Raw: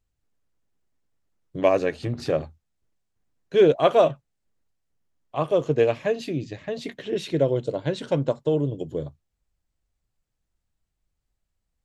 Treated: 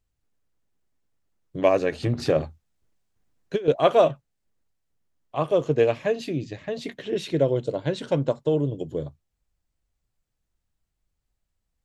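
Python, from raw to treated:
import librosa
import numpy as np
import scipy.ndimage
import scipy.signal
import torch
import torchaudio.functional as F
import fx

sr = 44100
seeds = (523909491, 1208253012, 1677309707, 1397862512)

y = fx.over_compress(x, sr, threshold_db=-21.0, ratio=-0.5, at=(1.92, 3.68))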